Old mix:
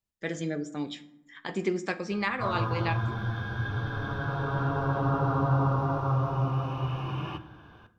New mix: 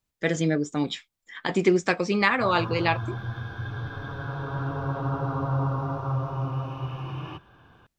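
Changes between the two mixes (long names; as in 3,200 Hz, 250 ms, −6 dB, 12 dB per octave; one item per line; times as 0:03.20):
speech +10.0 dB
reverb: off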